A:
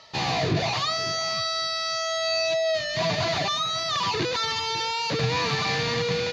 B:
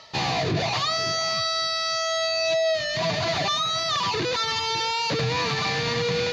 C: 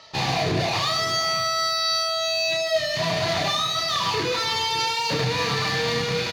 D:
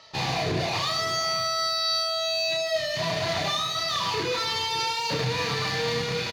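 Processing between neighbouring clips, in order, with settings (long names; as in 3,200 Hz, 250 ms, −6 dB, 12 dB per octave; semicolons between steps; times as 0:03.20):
reversed playback; upward compression, threshold −30 dBFS; reversed playback; brickwall limiter −18.5 dBFS, peak gain reduction 4.5 dB; level +2 dB
harmonic generator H 3 −25 dB, 8 −31 dB, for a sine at −16 dBFS; reverse bouncing-ball delay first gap 30 ms, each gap 1.5×, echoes 5
double-tracking delay 32 ms −12 dB; level −3.5 dB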